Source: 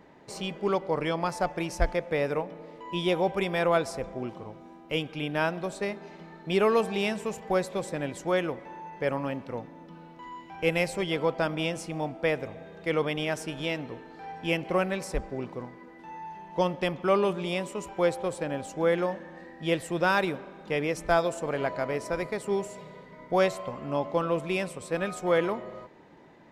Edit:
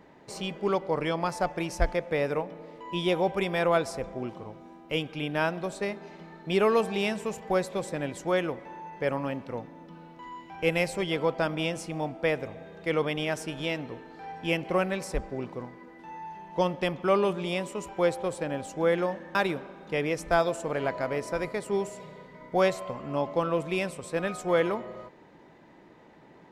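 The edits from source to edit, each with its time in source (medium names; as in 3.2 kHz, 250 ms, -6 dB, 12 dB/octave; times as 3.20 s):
19.35–20.13 s: delete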